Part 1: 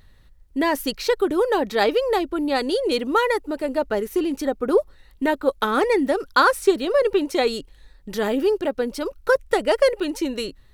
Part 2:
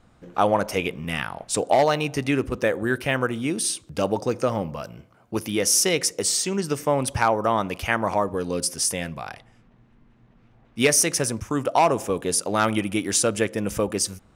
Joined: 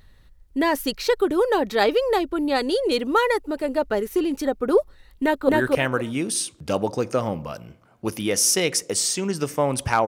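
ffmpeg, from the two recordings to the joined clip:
-filter_complex "[0:a]apad=whole_dur=10.07,atrim=end=10.07,atrim=end=5.492[s0];[1:a]atrim=start=2.778:end=7.36[s1];[s0][s1]acrossfade=d=0.004:c1=hsin:c2=hsin,asplit=2[s2][s3];[s3]afade=t=in:st=5.17:d=0.01,afade=t=out:st=5.49:d=0.01,aecho=0:1:260|520|780:0.944061|0.188812|0.0377624[s4];[s2][s4]amix=inputs=2:normalize=0"

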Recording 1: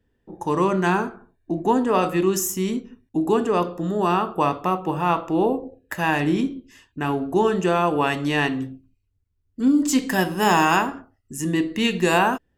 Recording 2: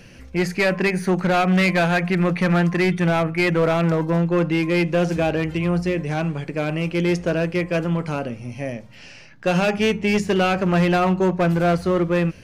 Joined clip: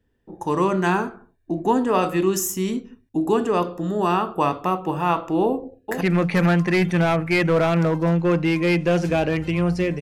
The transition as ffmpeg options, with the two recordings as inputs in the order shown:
-filter_complex "[0:a]apad=whole_dur=10.01,atrim=end=10.01,atrim=end=6.012[s0];[1:a]atrim=start=2.078:end=6.08[s1];[s0][s1]acrossfade=d=0.004:c1=hsin:c2=hsin,asplit=2[s2][s3];[s3]afade=t=in:st=5.43:d=0.01,afade=t=out:st=6.01:d=0.01,aecho=0:1:450|900|1350|1800:0.421697|0.126509|0.0379527|0.0113858[s4];[s2][s4]amix=inputs=2:normalize=0"

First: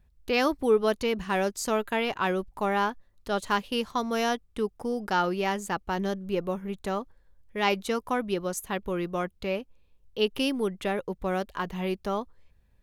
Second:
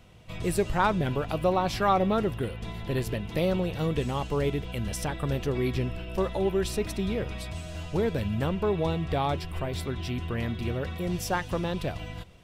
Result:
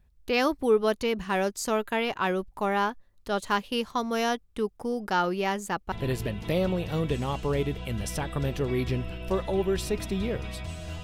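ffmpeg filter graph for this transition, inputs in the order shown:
-filter_complex "[0:a]apad=whole_dur=11.03,atrim=end=11.03,atrim=end=5.922[s0];[1:a]atrim=start=2.788:end=7.9[s1];[s0][s1]acrossfade=d=0.004:c1=hsin:c2=hsin"

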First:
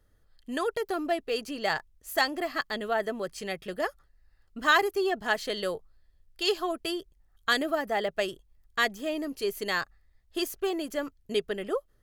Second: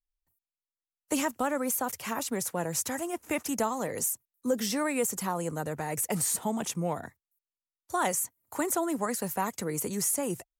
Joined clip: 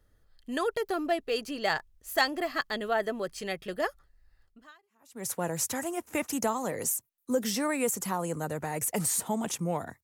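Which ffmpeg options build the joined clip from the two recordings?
-filter_complex "[0:a]apad=whole_dur=10.03,atrim=end=10.03,atrim=end=5.27,asetpts=PTS-STARTPTS[s0];[1:a]atrim=start=1.61:end=7.19,asetpts=PTS-STARTPTS[s1];[s0][s1]acrossfade=d=0.82:c1=exp:c2=exp"

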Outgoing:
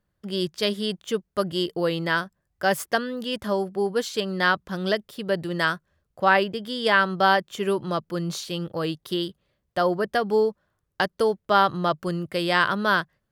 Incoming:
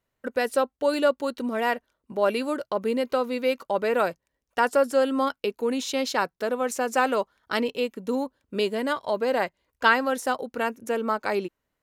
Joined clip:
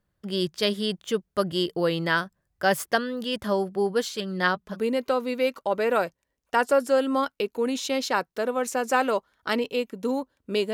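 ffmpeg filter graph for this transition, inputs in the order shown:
-filter_complex "[0:a]asplit=3[s0][s1][s2];[s0]afade=t=out:st=4.13:d=0.02[s3];[s1]flanger=delay=4.7:depth=1.2:regen=31:speed=1.5:shape=sinusoidal,afade=t=in:st=4.13:d=0.02,afade=t=out:st=4.77:d=0.02[s4];[s2]afade=t=in:st=4.77:d=0.02[s5];[s3][s4][s5]amix=inputs=3:normalize=0,apad=whole_dur=10.73,atrim=end=10.73,atrim=end=4.77,asetpts=PTS-STARTPTS[s6];[1:a]atrim=start=2.75:end=8.77,asetpts=PTS-STARTPTS[s7];[s6][s7]acrossfade=d=0.06:c1=tri:c2=tri"

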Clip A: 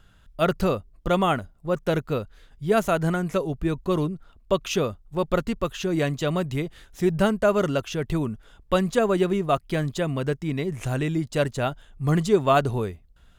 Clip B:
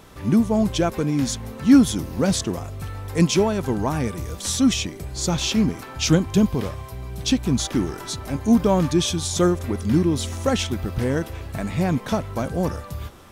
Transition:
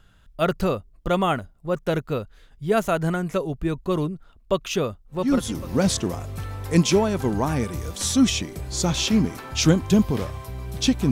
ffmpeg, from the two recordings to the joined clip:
-filter_complex "[0:a]apad=whole_dur=11.11,atrim=end=11.11,atrim=end=5.77,asetpts=PTS-STARTPTS[s0];[1:a]atrim=start=1.51:end=7.55,asetpts=PTS-STARTPTS[s1];[s0][s1]acrossfade=d=0.7:c1=tri:c2=tri"

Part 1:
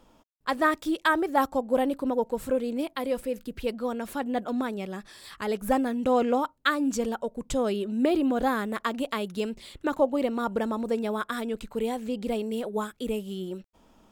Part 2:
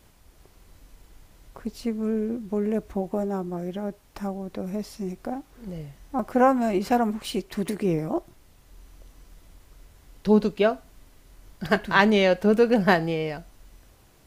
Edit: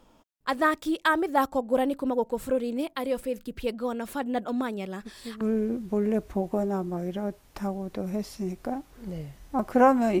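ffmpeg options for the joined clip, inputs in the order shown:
-filter_complex "[1:a]asplit=2[s0][s1];[0:a]apad=whole_dur=10.2,atrim=end=10.2,atrim=end=5.412[s2];[s1]atrim=start=2.008:end=6.8[s3];[s0]atrim=start=1.59:end=2.01,asetpts=PTS-STARTPTS,volume=0.266,afade=t=in:d=0.004:c=hsin,afade=t=out:st=0.416:d=0.004:c=hsin,adelay=4990[s4];[s2][s3]acrossfade=d=0.004:c1=hsin:c2=hsin[s5];[s5][s4]amix=inputs=2:normalize=0"

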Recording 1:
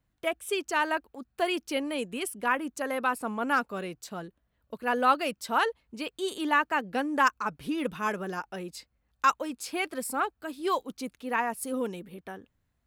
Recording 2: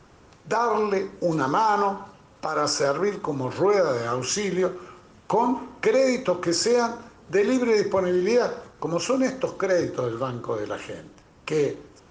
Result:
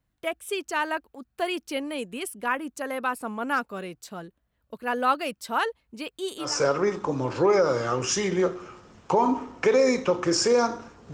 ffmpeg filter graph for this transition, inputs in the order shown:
-filter_complex "[0:a]apad=whole_dur=11.13,atrim=end=11.13,atrim=end=6.58,asetpts=PTS-STARTPTS[s0];[1:a]atrim=start=2.58:end=7.33,asetpts=PTS-STARTPTS[s1];[s0][s1]acrossfade=d=0.2:c1=tri:c2=tri"

